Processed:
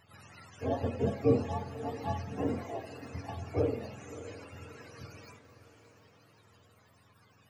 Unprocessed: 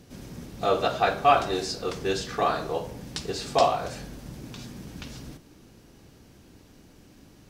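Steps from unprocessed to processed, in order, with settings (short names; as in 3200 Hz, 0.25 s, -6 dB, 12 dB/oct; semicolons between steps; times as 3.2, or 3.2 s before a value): spectrum mirrored in octaves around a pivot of 570 Hz; diffused feedback echo 0.603 s, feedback 48%, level -13.5 dB; gain -7 dB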